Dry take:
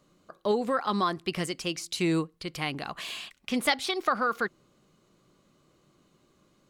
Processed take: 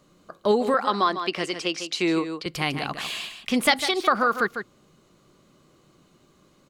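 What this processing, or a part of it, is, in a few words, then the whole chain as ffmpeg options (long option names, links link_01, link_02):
ducked delay: -filter_complex "[0:a]asettb=1/sr,asplit=3[link_01][link_02][link_03];[link_01]atrim=end=0.744[link_04];[link_02]atrim=start=0.74:end=2.46,asetpts=PTS-STARTPTS,afade=type=in:duration=0.004:curve=qsin,afade=type=out:start_time=1.716:duration=0.004:curve=qsin,acrossover=split=250 6800:gain=0.141 1 0.141[link_05][link_06][link_07];[link_05][link_06][link_07]amix=inputs=3:normalize=0[link_08];[link_03]atrim=start=2.456[link_09];[link_04][link_08]acrossfade=duration=0.004:curve1=hsin:curve2=qsin[link_10];[link_10][link_09]acrossfade=duration=0.004:curve1=qsin:curve2=hsin,asplit=3[link_11][link_12][link_13];[link_12]adelay=151,volume=-8dB[link_14];[link_13]apad=whole_len=301954[link_15];[link_14][link_15]sidechaincompress=threshold=-31dB:ratio=8:attack=25:release=189[link_16];[link_11][link_16]amix=inputs=2:normalize=0,volume=5.5dB"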